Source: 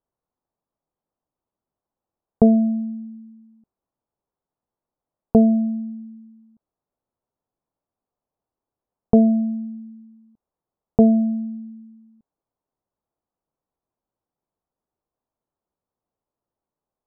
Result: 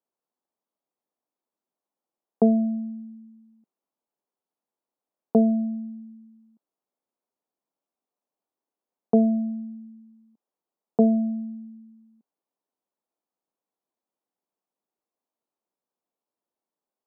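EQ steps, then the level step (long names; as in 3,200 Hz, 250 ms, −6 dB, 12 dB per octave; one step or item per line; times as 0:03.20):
high-pass filter 200 Hz 24 dB per octave
−3.5 dB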